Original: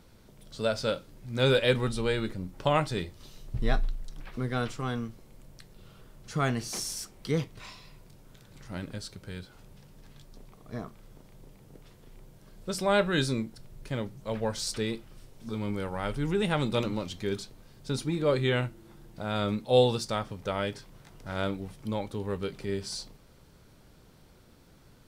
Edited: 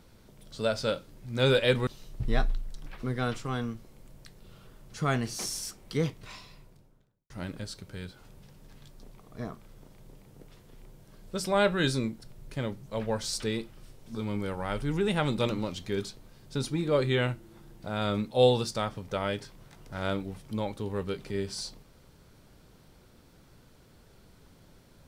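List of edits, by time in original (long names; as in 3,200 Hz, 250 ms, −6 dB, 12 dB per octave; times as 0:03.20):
0:01.87–0:03.21: remove
0:07.73–0:08.64: fade out and dull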